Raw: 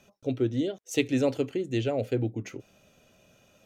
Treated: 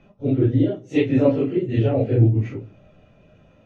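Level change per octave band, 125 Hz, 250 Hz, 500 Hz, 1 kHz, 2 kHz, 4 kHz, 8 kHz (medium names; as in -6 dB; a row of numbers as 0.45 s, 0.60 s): +14.5 dB, +8.5 dB, +7.0 dB, +5.5 dB, +2.0 dB, no reading, under -10 dB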